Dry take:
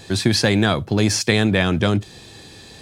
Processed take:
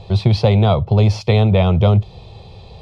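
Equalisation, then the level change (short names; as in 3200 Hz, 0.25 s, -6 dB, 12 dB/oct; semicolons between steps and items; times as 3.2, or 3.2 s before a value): air absorption 360 m; low shelf 93 Hz +8.5 dB; fixed phaser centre 690 Hz, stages 4; +7.5 dB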